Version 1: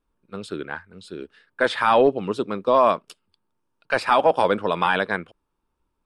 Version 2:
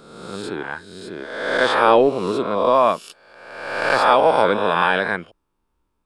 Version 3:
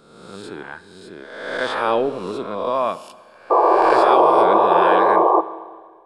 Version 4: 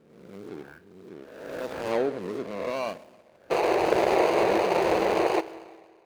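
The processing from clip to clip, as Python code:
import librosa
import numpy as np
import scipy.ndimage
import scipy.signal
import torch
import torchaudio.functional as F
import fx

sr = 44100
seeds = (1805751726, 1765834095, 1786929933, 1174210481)

y1 = fx.spec_swells(x, sr, rise_s=1.17)
y2 = fx.spec_paint(y1, sr, seeds[0], shape='noise', start_s=3.5, length_s=1.91, low_hz=320.0, high_hz=1200.0, level_db=-9.0)
y2 = fx.rev_schroeder(y2, sr, rt60_s=1.7, comb_ms=27, drr_db=15.0)
y2 = y2 * librosa.db_to_amplitude(-5.5)
y3 = scipy.ndimage.median_filter(y2, 41, mode='constant')
y3 = fx.highpass(y3, sr, hz=94.0, slope=6)
y3 = y3 * librosa.db_to_amplitude(-4.0)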